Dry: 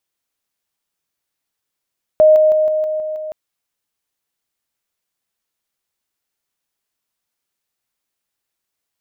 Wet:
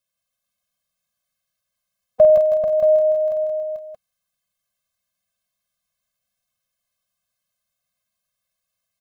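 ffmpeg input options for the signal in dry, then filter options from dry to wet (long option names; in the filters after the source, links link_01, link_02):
-f lavfi -i "aevalsrc='pow(10,(-5.5-3*floor(t/0.16))/20)*sin(2*PI*620*t)':duration=1.12:sample_rate=44100"
-filter_complex "[0:a]asplit=2[link_01][link_02];[link_02]aecho=0:1:49|99|175|440|627:0.473|0.15|0.501|0.562|0.355[link_03];[link_01][link_03]amix=inputs=2:normalize=0,afftfilt=real='re*eq(mod(floor(b*sr/1024/250),2),0)':imag='im*eq(mod(floor(b*sr/1024/250),2),0)':win_size=1024:overlap=0.75"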